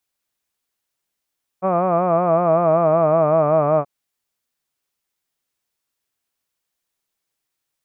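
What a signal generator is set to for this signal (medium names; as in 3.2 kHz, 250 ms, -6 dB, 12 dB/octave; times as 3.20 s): formant-synthesis vowel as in hud, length 2.23 s, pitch 182 Hz, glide -3.5 st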